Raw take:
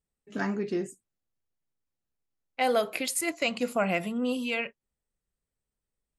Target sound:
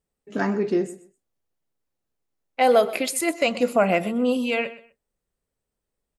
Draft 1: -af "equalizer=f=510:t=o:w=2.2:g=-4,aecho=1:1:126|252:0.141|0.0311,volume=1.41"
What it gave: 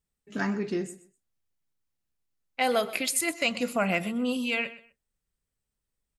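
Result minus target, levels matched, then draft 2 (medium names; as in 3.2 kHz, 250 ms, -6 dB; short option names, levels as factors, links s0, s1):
500 Hz band -4.0 dB
-af "equalizer=f=510:t=o:w=2.2:g=6,aecho=1:1:126|252:0.141|0.0311,volume=1.41"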